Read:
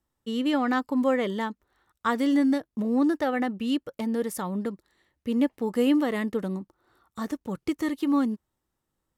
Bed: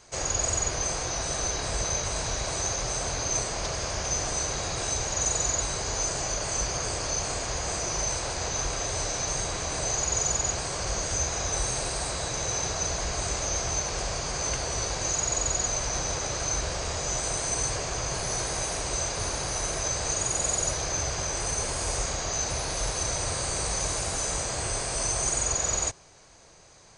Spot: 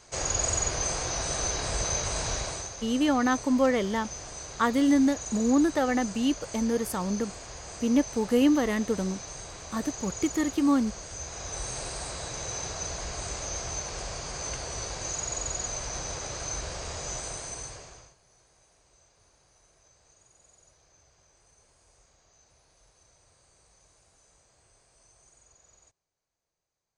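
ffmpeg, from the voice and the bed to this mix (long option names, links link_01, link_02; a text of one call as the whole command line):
ffmpeg -i stem1.wav -i stem2.wav -filter_complex "[0:a]adelay=2550,volume=0.5dB[link_01];[1:a]volume=5.5dB,afade=type=out:start_time=2.35:duration=0.35:silence=0.281838,afade=type=in:start_time=11.15:duration=0.66:silence=0.501187,afade=type=out:start_time=17.1:duration=1.05:silence=0.0398107[link_02];[link_01][link_02]amix=inputs=2:normalize=0" out.wav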